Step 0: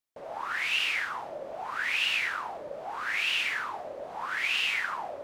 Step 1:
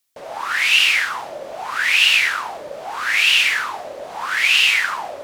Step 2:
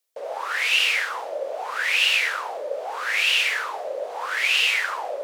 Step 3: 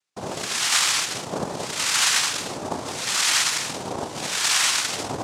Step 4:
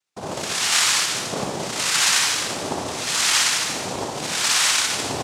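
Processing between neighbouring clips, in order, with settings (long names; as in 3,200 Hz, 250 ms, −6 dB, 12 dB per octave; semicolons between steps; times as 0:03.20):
high-shelf EQ 2,000 Hz +12 dB; level +6 dB
high-pass with resonance 490 Hz, resonance Q 4.1; level −6 dB
cochlear-implant simulation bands 2
reverse bouncing-ball delay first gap 60 ms, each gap 1.4×, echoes 5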